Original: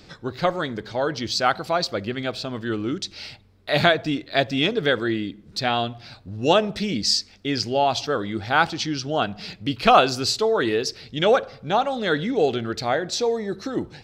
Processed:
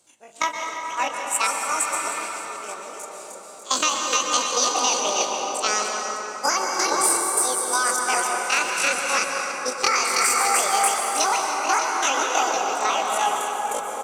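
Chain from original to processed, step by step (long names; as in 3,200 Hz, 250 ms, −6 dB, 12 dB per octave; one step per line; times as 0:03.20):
high-pass filter 76 Hz 12 dB per octave
parametric band 110 Hz −10.5 dB 0.93 octaves
double-tracking delay 42 ms −13.5 dB
echo with a time of its own for lows and highs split 740 Hz, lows 442 ms, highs 298 ms, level −3.5 dB
noise gate −21 dBFS, range −17 dB
parametric band 4,300 Hz +9 dB 1.8 octaves
downward compressor 6 to 1, threshold −18 dBFS, peak gain reduction 10.5 dB
pitch shifter +10 semitones
dense smooth reverb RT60 4.4 s, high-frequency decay 0.4×, pre-delay 110 ms, DRR 0.5 dB
healed spectral selection 0:01.49–0:02.16, 1,500–5,400 Hz after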